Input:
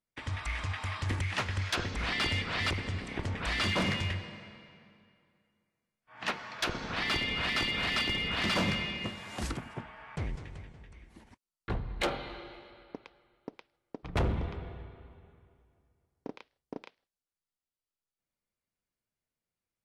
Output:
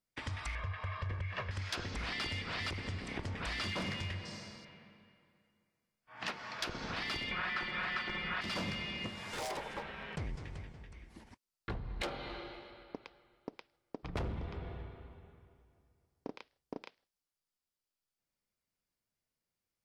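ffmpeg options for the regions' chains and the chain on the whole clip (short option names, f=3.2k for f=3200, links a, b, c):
-filter_complex "[0:a]asettb=1/sr,asplit=3[a][b][c];[a]atrim=end=0.554[d];[b]atrim=start=0.55:end=1.51,asetpts=PTS-STARTPTS,afade=t=in:d=0.004:c=qsin,afade=t=out:st=0.956:d=0.004:c=qsin,lowpass=2.3k,aecho=1:1:1.8:0.7,atrim=end_sample=42336[e];[c]atrim=start=1.506[f];[d][e]acrossfade=d=0.004:c1=hsin:c2=qsin[g];[g][f]acrossfade=d=0.004:c1=qsin:c2=hsin,asettb=1/sr,asplit=3[h][i][j];[h]atrim=end=4.254[k];[i]atrim=start=4.25:end=4.65,asetpts=PTS-STARTPTS,afade=t=in:d=0.004:c=qsin,afade=t=out:st=0.396:d=0.004:c=qsin,lowpass=11k,highshelf=f=4.2k:t=q:w=1.5:g=13.5[l];[j]atrim=start=4.646[m];[k][l]acrossfade=d=0.004:c1=hsin:c2=qsin[n];[n][m]acrossfade=d=0.004:c1=qsin:c2=hsin,asettb=1/sr,asplit=3[o][p][q];[o]atrim=end=7.314[r];[p]atrim=start=7.31:end=8.41,asetpts=PTS-STARTPTS,afade=t=in:d=0.004:c=qsin,afade=t=out:st=1.096:d=0.004:c=qsin,lowpass=f=2.1k:p=1,equalizer=f=1.5k:t=o:w=1.7:g=13,aecho=1:1:5.5:0.74,atrim=end_sample=48510[s];[q]atrim=start=8.406[t];[r][s]acrossfade=d=0.004:c1=hsin:c2=qsin[u];[u][t]acrossfade=d=0.004:c1=qsin:c2=hsin,asettb=1/sr,asplit=3[v][w][x];[v]atrim=end=9.334[y];[w]atrim=start=9.33:end=10.16,asetpts=PTS-STARTPTS,afade=t=in:d=0.004:c=qsin,afade=t=out:st=0.826:d=0.004:c=qsin,aeval=exprs='val(0)*sin(2*PI*700*n/s)':c=same,acontrast=74,volume=33.5dB,asoftclip=hard,volume=-33.5dB[z];[x]atrim=start=10.156[aa];[y][z]acrossfade=d=0.004:c1=hsin:c2=qsin[ab];[ab][aa]acrossfade=d=0.004:c1=qsin:c2=hsin,equalizer=f=5k:w=4.1:g=4.5,acompressor=threshold=-37dB:ratio=4"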